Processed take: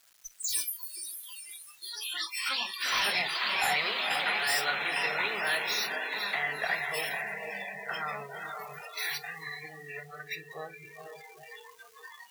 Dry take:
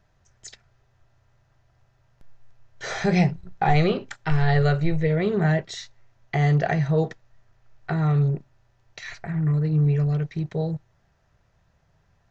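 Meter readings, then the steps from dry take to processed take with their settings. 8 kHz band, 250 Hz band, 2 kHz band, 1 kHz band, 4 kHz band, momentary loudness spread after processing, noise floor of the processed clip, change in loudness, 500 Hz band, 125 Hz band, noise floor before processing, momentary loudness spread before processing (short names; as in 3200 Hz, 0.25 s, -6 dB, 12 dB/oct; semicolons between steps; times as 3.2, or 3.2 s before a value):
n/a, -25.5 dB, +3.5 dB, -4.5 dB, +9.0 dB, 20 LU, -55 dBFS, -7.0 dB, -12.5 dB, -32.5 dB, -65 dBFS, 14 LU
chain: switching spikes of -19 dBFS; HPF 1400 Hz 12 dB/oct; echoes that change speed 0.215 s, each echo +5 st, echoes 3; in parallel at +2 dB: level quantiser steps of 10 dB; on the sum: soft clip -23 dBFS, distortion -7 dB; diffused feedback echo 0.481 s, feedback 63%, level -4 dB; spectral noise reduction 28 dB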